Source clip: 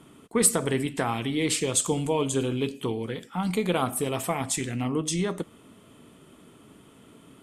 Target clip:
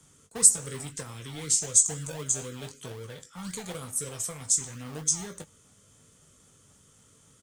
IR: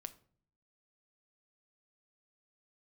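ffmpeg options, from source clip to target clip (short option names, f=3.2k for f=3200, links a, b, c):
-filter_complex "[0:a]firequalizer=gain_entry='entry(100,0);entry(220,-12);entry(330,-16);entry(510,-3);entry(760,-19);entry(1100,-9);entry(1600,-6);entry(2600,-10);entry(6200,13);entry(12000,-5)':delay=0.05:min_phase=1,acrossover=split=110|460|5100[a][b][c][d];[a]alimiter=level_in=24dB:limit=-24dB:level=0:latency=1,volume=-24dB[e];[b]acrusher=samples=34:mix=1:aa=0.000001:lfo=1:lforange=20.4:lforate=3.9[f];[c]acompressor=threshold=-41dB:ratio=6[g];[e][f][g][d]amix=inputs=4:normalize=0,asplit=2[h][i];[i]adelay=20,volume=-8dB[j];[h][j]amix=inputs=2:normalize=0,volume=-2dB"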